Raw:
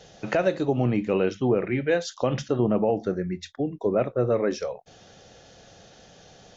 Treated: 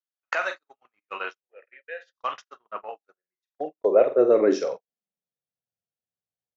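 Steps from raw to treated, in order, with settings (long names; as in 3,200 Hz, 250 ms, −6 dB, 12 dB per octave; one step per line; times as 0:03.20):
high-pass filter sweep 1,200 Hz → 84 Hz, 0:02.91–0:06.02
on a send: flutter between parallel walls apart 7.8 metres, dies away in 0.31 s
on the sum: noise gate −30 dBFS, range −53 dB
0:01.40–0:02.15: formant filter e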